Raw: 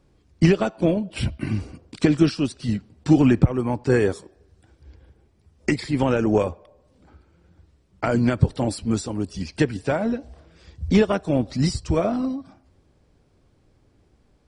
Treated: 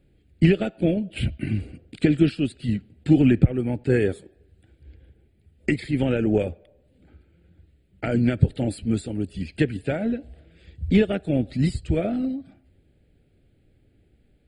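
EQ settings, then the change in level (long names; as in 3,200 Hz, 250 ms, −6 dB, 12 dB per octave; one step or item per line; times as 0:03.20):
phaser with its sweep stopped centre 2,500 Hz, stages 4
0.0 dB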